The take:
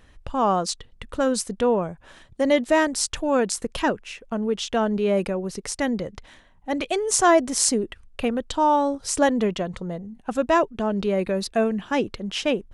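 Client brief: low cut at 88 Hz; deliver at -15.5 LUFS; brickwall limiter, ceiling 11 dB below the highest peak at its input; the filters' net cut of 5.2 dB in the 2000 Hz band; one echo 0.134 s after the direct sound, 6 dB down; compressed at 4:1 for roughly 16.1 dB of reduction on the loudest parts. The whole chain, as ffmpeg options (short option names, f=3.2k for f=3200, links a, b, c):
-af "highpass=88,equalizer=f=2k:t=o:g=-6.5,acompressor=threshold=-34dB:ratio=4,alimiter=level_in=3dB:limit=-24dB:level=0:latency=1,volume=-3dB,aecho=1:1:134:0.501,volume=21dB"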